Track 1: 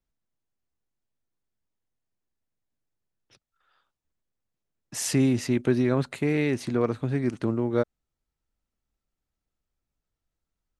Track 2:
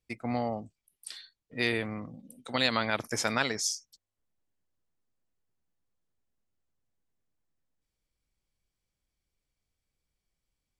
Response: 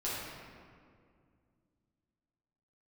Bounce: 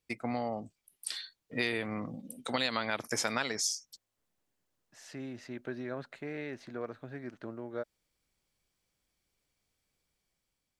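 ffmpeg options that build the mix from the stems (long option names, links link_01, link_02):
-filter_complex "[0:a]equalizer=frequency=630:width_type=o:width=0.67:gain=8,equalizer=frequency=1600:width_type=o:width=0.67:gain=9,equalizer=frequency=4000:width_type=o:width=0.67:gain=3,equalizer=frequency=10000:width_type=o:width=0.67:gain=-11,volume=-16dB[link_01];[1:a]dynaudnorm=framelen=310:gausssize=5:maxgain=4dB,volume=2.5dB,asplit=2[link_02][link_03];[link_03]apad=whole_len=475940[link_04];[link_01][link_04]sidechaincompress=threshold=-34dB:ratio=5:attack=8.2:release=1460[link_05];[link_05][link_02]amix=inputs=2:normalize=0,lowshelf=frequency=97:gain=-11,acompressor=threshold=-31dB:ratio=3"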